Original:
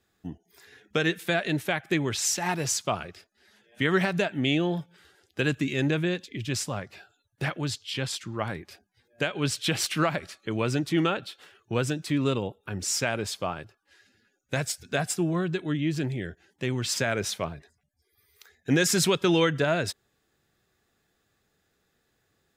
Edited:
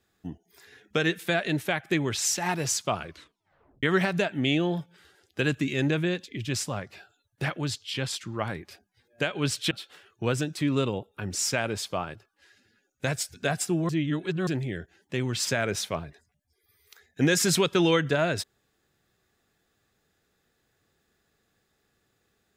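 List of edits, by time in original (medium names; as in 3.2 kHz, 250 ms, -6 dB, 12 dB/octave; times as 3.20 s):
3.04 s: tape stop 0.79 s
9.71–11.20 s: delete
15.38–15.96 s: reverse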